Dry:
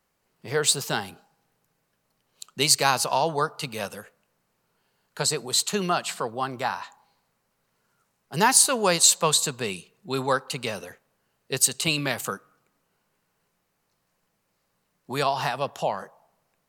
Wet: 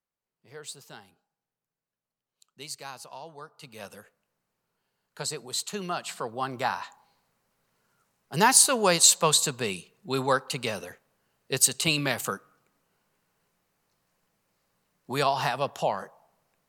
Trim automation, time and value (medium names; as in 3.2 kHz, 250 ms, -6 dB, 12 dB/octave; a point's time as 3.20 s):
3.44 s -19.5 dB
3.93 s -8 dB
5.84 s -8 dB
6.64 s -0.5 dB